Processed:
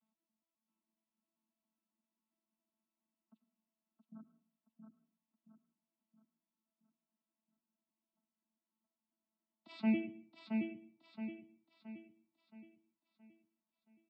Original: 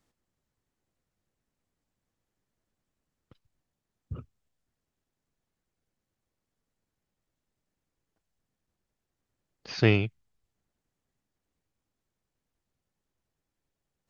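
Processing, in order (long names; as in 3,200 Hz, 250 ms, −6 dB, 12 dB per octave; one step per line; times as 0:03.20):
vocoder with an arpeggio as carrier bare fifth, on A3, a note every 136 ms
high-pass filter 150 Hz 12 dB per octave
gate on every frequency bin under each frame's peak −30 dB strong
phaser with its sweep stopped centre 1,700 Hz, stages 6
repeating echo 672 ms, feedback 45%, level −4.5 dB
on a send at −14 dB: convolution reverb RT60 0.50 s, pre-delay 85 ms
on the sum: level −4 dB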